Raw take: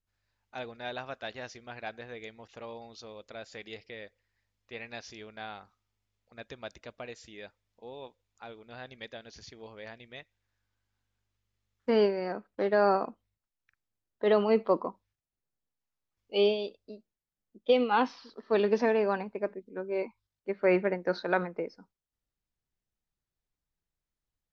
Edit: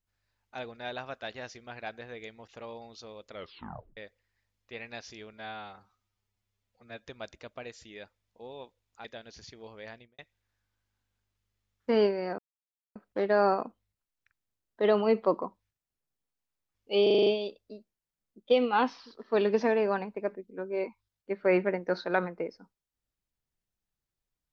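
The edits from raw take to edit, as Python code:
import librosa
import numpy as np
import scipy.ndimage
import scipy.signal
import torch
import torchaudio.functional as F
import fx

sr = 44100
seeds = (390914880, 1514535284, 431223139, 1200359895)

y = fx.studio_fade_out(x, sr, start_s=9.93, length_s=0.25)
y = fx.edit(y, sr, fx.tape_stop(start_s=3.31, length_s=0.66),
    fx.stretch_span(start_s=5.33, length_s=1.15, factor=1.5),
    fx.cut(start_s=8.47, length_s=0.57),
    fx.insert_silence(at_s=12.38, length_s=0.57),
    fx.stutter(start_s=16.45, slice_s=0.04, count=7), tone=tone)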